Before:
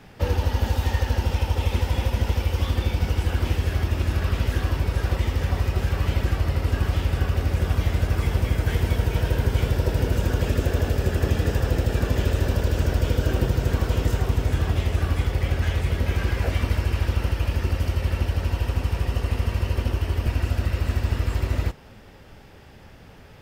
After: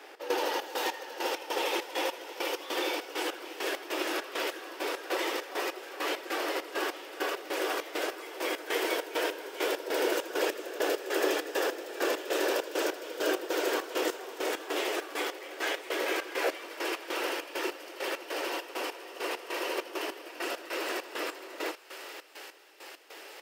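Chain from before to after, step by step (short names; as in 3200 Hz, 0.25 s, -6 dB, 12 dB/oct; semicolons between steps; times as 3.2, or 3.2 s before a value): steep high-pass 310 Hz 72 dB/oct; thinning echo 0.504 s, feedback 85%, high-pass 1100 Hz, level -11 dB; step gate "x.xx.x.." 100 bpm -12 dB; gain +2.5 dB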